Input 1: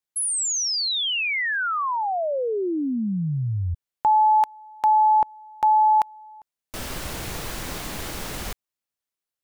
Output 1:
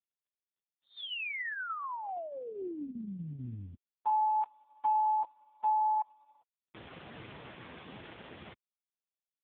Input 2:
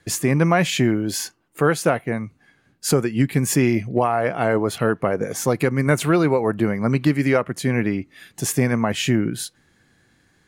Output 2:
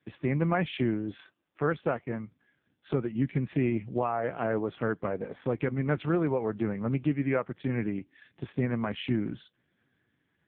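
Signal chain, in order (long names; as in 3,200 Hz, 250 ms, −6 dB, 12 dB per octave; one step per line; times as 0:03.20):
level −9 dB
AMR narrowband 4.75 kbit/s 8,000 Hz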